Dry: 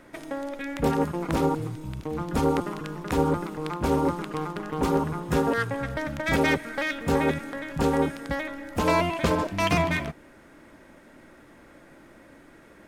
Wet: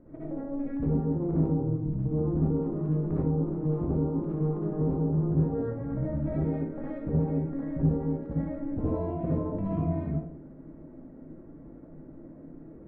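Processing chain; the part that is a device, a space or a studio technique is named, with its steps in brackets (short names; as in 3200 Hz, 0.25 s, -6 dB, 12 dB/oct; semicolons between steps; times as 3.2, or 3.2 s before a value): television next door (compressor 5:1, threshold -30 dBFS, peak gain reduction 11.5 dB; LPF 360 Hz 12 dB/oct; reverb RT60 0.50 s, pre-delay 55 ms, DRR -7.5 dB)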